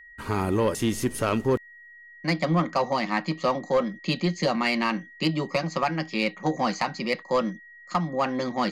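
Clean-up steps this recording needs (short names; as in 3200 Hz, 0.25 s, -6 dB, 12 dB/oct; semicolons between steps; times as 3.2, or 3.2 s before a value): notch 1900 Hz, Q 30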